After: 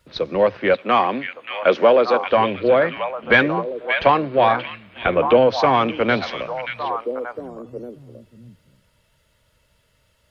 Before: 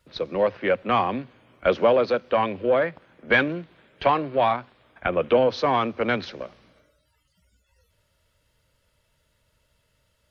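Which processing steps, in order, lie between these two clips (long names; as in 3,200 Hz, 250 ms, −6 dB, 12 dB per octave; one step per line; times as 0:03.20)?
0:00.74–0:02.26: high-pass filter 230 Hz 12 dB per octave
on a send: echo through a band-pass that steps 581 ms, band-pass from 2,500 Hz, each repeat −1.4 octaves, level −3.5 dB
on the sum: level +5 dB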